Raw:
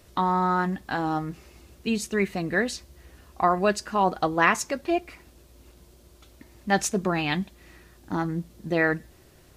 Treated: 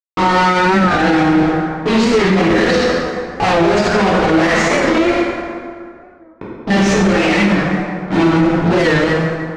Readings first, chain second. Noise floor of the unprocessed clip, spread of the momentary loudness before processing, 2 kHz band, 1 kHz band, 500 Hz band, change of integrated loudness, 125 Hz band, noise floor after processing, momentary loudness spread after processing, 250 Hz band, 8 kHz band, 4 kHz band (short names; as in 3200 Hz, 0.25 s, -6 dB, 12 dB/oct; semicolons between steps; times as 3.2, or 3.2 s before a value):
-55 dBFS, 11 LU, +12.0 dB, +10.0 dB, +14.0 dB, +12.0 dB, +14.0 dB, -40 dBFS, 7 LU, +15.5 dB, +6.0 dB, +15.0 dB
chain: sample leveller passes 3; notches 50/100/150/200 Hz; low-pass opened by the level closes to 540 Hz, open at -10 dBFS; graphic EQ 500/1000/2000 Hz +10/-5/+9 dB; fuzz box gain 32 dB, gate -32 dBFS; air absorption 130 m; plate-style reverb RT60 2.2 s, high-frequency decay 0.55×, DRR -8.5 dB; maximiser +1 dB; record warp 45 rpm, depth 100 cents; gain -3.5 dB